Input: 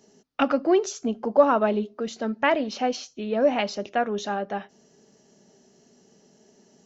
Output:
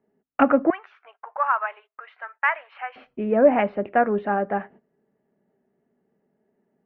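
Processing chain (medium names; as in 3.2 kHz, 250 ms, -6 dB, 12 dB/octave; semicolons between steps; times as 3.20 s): 0.70–2.96 s: inverse Chebyshev high-pass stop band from 230 Hz, stop band 70 dB; gate -50 dBFS, range -17 dB; steep low-pass 2.2 kHz 36 dB/octave; trim +5 dB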